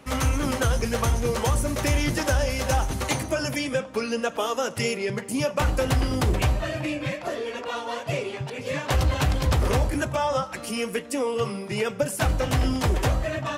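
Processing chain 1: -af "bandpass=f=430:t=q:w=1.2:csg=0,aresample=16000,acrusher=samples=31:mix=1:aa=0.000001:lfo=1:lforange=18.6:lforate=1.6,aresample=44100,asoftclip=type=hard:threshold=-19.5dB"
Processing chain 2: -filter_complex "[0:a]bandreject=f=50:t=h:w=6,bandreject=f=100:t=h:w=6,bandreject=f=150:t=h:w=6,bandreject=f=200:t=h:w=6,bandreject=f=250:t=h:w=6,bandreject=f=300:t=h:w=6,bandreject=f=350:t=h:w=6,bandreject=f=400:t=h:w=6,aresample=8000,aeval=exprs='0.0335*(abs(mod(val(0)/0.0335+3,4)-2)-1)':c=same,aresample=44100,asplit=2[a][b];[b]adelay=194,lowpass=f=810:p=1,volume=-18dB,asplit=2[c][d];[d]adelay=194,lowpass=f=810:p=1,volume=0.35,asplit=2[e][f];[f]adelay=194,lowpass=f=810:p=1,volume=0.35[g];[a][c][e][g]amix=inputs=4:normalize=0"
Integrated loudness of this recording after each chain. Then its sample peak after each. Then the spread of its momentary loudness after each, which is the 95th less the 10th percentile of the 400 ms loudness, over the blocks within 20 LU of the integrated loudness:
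-32.5, -34.0 LUFS; -19.5, -25.0 dBFS; 5, 1 LU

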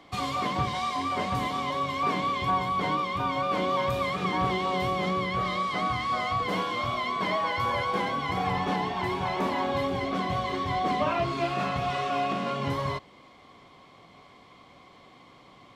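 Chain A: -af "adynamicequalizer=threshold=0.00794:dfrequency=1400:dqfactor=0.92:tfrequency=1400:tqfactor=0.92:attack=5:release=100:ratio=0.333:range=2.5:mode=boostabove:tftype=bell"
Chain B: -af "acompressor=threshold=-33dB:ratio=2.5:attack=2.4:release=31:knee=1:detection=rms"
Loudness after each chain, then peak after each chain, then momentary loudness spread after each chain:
-25.5, -33.5 LUFS; -11.0, -22.5 dBFS; 3, 20 LU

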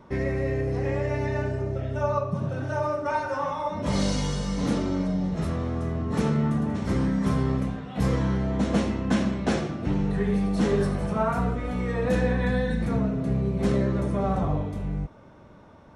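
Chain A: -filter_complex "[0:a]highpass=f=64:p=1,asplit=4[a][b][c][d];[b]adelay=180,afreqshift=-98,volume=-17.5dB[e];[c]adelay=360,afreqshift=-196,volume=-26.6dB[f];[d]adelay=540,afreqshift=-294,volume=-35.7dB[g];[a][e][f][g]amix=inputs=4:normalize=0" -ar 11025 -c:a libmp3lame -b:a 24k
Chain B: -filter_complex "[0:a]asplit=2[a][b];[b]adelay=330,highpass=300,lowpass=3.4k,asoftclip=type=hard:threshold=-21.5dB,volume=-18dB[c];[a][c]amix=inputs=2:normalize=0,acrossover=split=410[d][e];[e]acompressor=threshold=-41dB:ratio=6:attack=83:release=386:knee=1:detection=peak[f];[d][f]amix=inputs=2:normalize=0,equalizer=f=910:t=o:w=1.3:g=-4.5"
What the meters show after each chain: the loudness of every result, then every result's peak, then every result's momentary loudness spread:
-27.5, -28.0 LUFS; -12.5, -13.5 dBFS; 5, 6 LU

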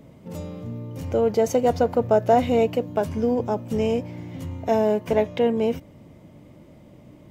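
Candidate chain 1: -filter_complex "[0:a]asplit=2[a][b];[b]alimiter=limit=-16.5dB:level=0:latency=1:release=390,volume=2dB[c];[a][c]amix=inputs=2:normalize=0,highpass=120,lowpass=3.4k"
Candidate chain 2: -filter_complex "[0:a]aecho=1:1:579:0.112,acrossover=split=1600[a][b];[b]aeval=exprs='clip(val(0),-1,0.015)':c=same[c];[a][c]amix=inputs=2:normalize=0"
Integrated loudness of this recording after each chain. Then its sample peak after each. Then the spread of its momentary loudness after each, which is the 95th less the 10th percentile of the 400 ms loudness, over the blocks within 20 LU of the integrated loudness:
-18.5, -22.5 LUFS; -3.5, -6.5 dBFS; 13, 16 LU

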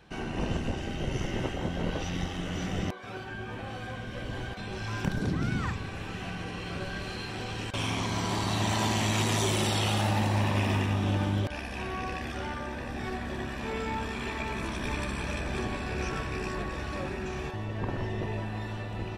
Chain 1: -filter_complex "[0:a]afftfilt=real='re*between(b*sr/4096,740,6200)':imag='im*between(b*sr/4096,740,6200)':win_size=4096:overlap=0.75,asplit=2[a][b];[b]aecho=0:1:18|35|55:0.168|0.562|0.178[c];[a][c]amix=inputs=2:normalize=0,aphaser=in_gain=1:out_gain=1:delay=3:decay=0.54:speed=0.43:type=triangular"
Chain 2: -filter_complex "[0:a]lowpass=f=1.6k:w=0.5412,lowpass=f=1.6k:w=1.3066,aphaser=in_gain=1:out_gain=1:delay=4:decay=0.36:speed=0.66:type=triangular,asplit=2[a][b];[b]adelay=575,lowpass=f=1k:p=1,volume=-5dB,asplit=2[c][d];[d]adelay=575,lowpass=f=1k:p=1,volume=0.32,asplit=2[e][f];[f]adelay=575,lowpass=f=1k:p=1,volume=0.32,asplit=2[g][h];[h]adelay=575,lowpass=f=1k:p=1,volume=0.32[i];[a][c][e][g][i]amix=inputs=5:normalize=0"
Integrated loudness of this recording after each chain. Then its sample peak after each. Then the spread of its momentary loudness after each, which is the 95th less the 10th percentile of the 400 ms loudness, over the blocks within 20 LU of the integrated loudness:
-33.5, -31.5 LUFS; -16.0, -13.0 dBFS; 12, 10 LU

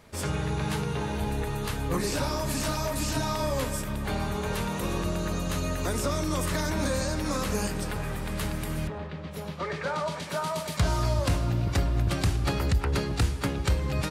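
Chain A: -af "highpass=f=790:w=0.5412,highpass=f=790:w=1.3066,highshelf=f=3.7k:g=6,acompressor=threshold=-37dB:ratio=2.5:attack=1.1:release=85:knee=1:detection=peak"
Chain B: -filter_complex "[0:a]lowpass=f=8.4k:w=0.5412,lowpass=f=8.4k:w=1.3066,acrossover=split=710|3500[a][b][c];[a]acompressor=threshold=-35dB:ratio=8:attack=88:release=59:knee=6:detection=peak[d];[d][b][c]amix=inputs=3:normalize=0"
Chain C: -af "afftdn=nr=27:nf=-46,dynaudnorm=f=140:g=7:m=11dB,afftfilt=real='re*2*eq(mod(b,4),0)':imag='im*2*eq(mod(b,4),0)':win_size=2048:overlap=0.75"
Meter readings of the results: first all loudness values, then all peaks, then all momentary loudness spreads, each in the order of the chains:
-38.0, -32.0, -21.5 LUFS; -22.0, -14.5, -4.5 dBFS; 4, 4, 8 LU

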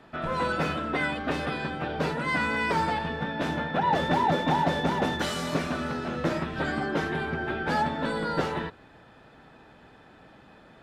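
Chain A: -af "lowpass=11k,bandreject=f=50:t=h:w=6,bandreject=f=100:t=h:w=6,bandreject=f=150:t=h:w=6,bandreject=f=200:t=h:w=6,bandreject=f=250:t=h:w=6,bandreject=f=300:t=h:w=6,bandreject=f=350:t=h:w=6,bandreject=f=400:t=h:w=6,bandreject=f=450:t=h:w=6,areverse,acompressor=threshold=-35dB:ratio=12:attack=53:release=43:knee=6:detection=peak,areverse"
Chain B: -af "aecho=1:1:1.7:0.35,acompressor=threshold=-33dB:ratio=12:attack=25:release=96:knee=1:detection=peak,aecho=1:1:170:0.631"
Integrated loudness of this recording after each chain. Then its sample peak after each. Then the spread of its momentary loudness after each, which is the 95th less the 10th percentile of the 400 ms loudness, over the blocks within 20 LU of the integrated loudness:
-33.0, -32.5 LUFS; -20.5, -17.5 dBFS; 2, 19 LU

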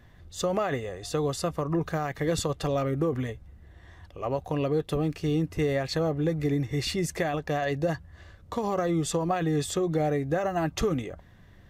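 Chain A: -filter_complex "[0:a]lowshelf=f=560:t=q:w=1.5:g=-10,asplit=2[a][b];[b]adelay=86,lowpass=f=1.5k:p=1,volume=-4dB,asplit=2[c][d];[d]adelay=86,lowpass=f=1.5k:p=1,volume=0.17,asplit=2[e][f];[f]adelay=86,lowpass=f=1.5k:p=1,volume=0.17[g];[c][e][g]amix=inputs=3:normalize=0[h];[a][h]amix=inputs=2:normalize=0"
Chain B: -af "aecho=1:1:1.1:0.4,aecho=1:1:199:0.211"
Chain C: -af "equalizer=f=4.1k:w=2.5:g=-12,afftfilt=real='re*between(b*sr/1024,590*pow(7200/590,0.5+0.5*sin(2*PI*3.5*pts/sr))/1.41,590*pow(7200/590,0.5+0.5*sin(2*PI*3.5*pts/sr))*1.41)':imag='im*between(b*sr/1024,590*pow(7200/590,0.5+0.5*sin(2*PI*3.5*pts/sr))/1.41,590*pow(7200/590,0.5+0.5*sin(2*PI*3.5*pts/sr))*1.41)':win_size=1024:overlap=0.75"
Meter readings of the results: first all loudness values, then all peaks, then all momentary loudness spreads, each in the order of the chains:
-32.5, -28.5, -39.5 LUFS; -14.5, -14.5, -18.5 dBFS; 8, 10, 15 LU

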